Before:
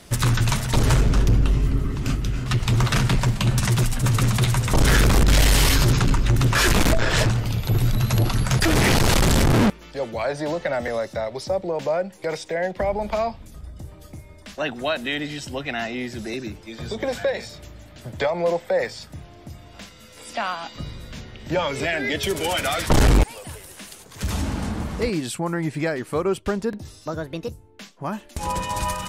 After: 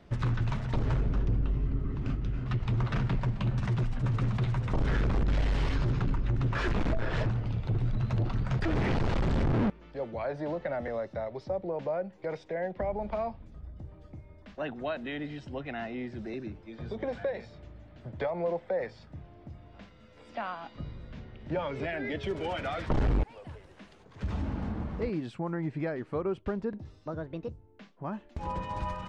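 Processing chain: tape spacing loss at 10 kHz 33 dB; compressor 2:1, threshold -21 dBFS, peak gain reduction 4.5 dB; gain -6 dB

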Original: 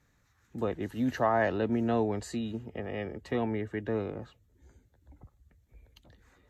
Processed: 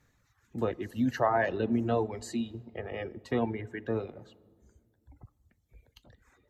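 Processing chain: on a send at -10 dB: reverb RT60 1.7 s, pre-delay 8 ms; on the sum: reverb removal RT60 1.9 s; gain +1 dB

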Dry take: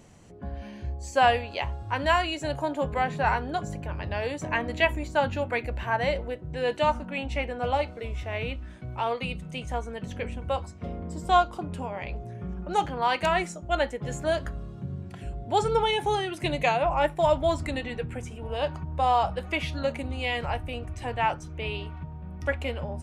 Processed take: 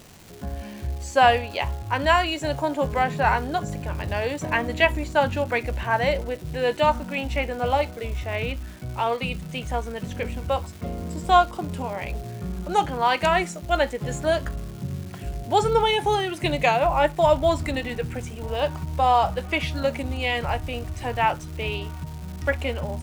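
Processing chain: crackle 560/s -40 dBFS; gain +4 dB

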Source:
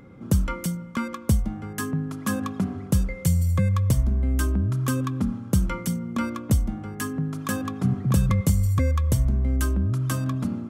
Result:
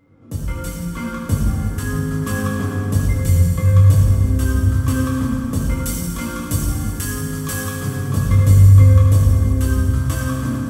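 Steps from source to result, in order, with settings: 5.77–8.08 high shelf 2900 Hz +11 dB; AGC gain up to 12 dB; reverb RT60 3.2 s, pre-delay 5 ms, DRR -8 dB; gain -12.5 dB

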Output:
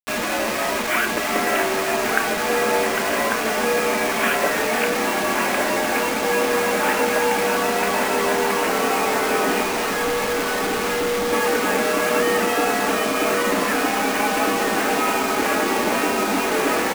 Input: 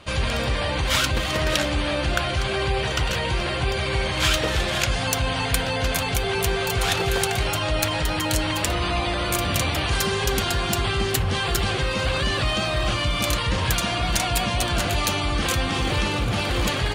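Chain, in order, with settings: doubler 28 ms -11.5 dB; on a send: darkening echo 1.145 s, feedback 67%, low-pass 1700 Hz, level -4 dB; on the sum: mistuned SSB +89 Hz 150–2400 Hz; 9.62–11.33 tube stage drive 22 dB, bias 0.35; bit-crush 5-bit; gain +4 dB

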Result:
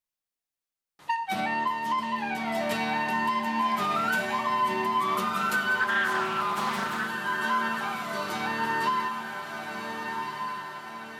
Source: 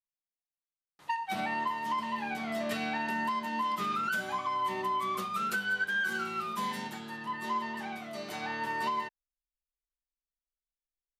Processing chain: diffused feedback echo 1.48 s, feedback 52%, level -5 dB; 5.79–7.07 Doppler distortion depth 0.32 ms; gain +4.5 dB

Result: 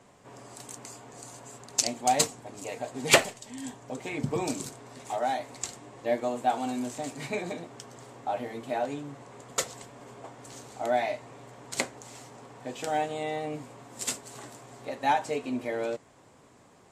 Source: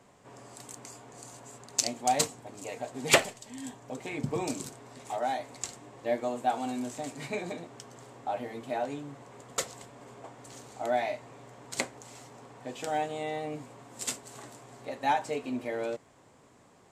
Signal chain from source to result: gain +2.5 dB; MP3 56 kbps 32000 Hz

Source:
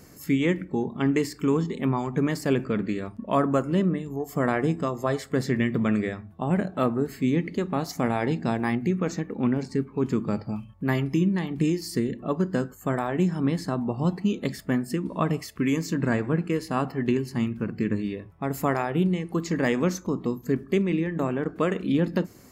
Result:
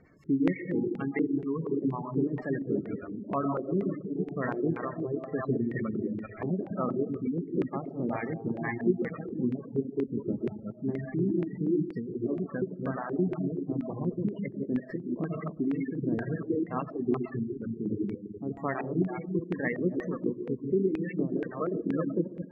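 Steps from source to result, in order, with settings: reverse delay 0.202 s, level -3 dB; on a send at -4 dB: reverb RT60 1.2 s, pre-delay 60 ms; on the sum: spectral gate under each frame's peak -20 dB strong; reverb removal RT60 0.97 s; LFO low-pass square 2.1 Hz 370–2200 Hz; gain -8.5 dB

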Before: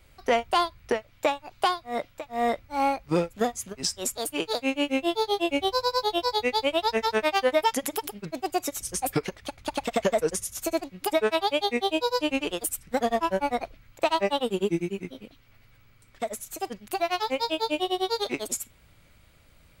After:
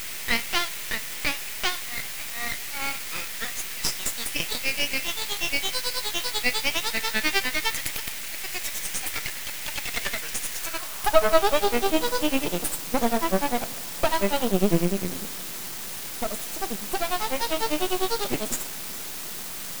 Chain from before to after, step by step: two-slope reverb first 0.43 s, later 4.9 s, from -18 dB, DRR 10.5 dB; requantised 6-bit, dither triangular; high-pass sweep 2000 Hz -> 170 Hz, 10.48–12.16; half-wave rectifier; gain +4.5 dB

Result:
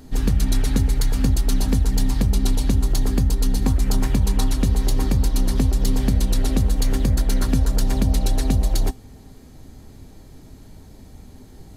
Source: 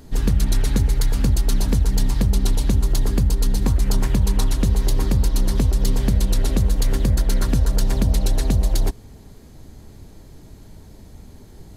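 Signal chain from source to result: resonator 260 Hz, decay 0.16 s, harmonics odd, mix 60%; gain +6.5 dB

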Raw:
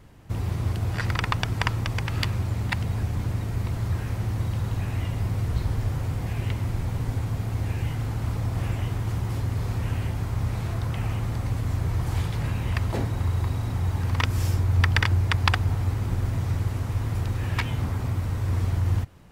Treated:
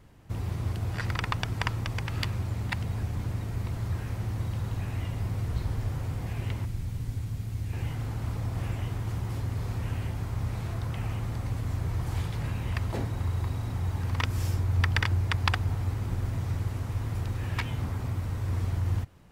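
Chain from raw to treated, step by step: 6.65–7.73 bell 790 Hz -10.5 dB 2.9 oct; gain -4.5 dB

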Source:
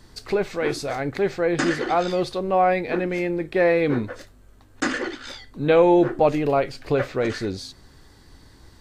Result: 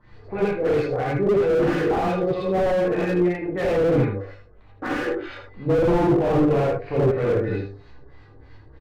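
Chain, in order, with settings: resonator 100 Hz, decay 0.56 s, harmonics all, mix 70%; LFO low-pass sine 3.1 Hz 370–2700 Hz; early reflections 16 ms -10.5 dB, 31 ms -12 dB, 78 ms -8 dB; non-linear reverb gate 0.11 s rising, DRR -6.5 dB; dynamic EQ 170 Hz, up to +6 dB, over -32 dBFS, Q 0.96; slew limiter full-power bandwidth 72 Hz; gain -1 dB

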